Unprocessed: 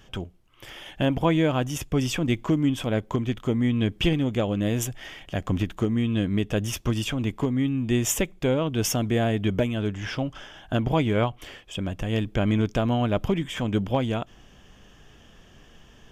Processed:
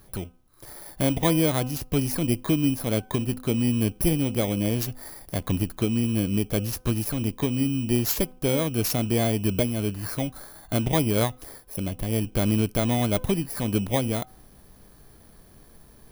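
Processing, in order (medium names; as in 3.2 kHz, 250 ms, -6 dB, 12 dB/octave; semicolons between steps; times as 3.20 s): bit-reversed sample order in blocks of 16 samples; de-hum 253.7 Hz, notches 6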